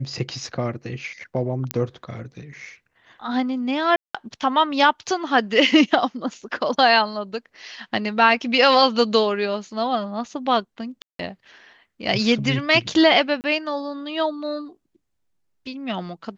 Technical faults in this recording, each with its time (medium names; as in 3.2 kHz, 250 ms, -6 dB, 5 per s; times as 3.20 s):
1.71 s: pop -6 dBFS
3.96–4.14 s: dropout 185 ms
11.02–11.19 s: dropout 173 ms
13.41–13.44 s: dropout 29 ms